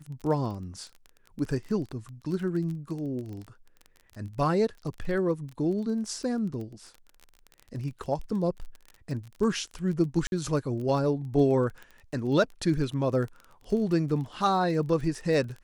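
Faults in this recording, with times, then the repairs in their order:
surface crackle 25 per second −35 dBFS
0:10.27–0:10.32: drop-out 51 ms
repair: click removal
repair the gap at 0:10.27, 51 ms

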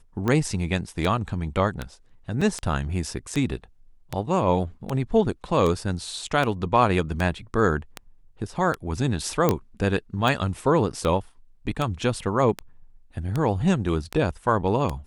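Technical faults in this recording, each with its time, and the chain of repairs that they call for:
scratch tick 78 rpm −13 dBFS
0:02.41–0:02.42: drop-out 5 ms
0:09.49: click −6 dBFS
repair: click removal
repair the gap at 0:02.41, 5 ms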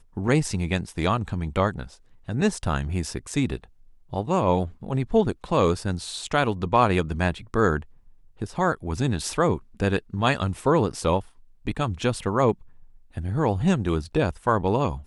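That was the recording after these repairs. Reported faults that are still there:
none of them is left

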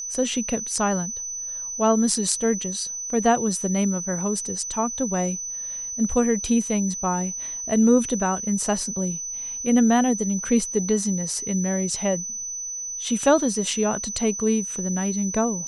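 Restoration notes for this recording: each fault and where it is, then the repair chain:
whistle 6,000 Hz −29 dBFS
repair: notch filter 6,000 Hz, Q 30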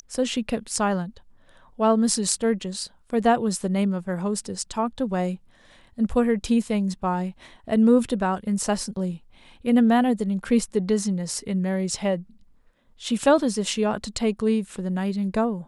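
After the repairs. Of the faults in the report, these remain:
none of them is left

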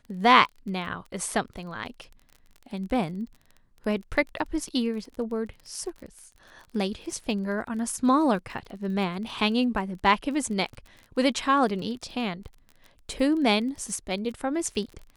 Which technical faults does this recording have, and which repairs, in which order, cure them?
surface crackle 28 per second −36 dBFS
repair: click removal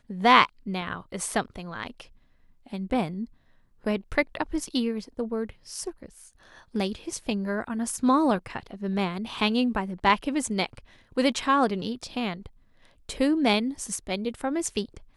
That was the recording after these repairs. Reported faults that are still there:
none of them is left

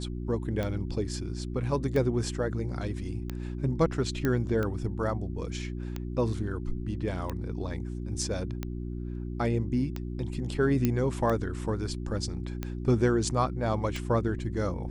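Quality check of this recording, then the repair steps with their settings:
mains hum 60 Hz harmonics 6 −35 dBFS
scratch tick 45 rpm −19 dBFS
0:04.25: click −15 dBFS
0:10.85: click −12 dBFS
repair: click removal
hum removal 60 Hz, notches 6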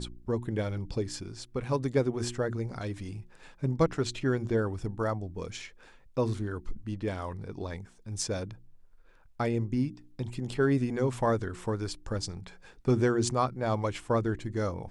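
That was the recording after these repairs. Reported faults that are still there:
none of them is left

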